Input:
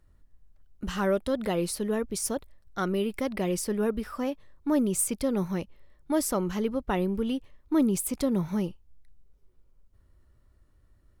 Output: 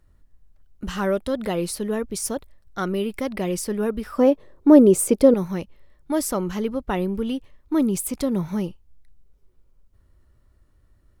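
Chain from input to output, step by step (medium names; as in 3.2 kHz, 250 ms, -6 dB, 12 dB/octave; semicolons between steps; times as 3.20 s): 4.18–5.34 s: peaking EQ 430 Hz +15 dB 1.8 oct; trim +3 dB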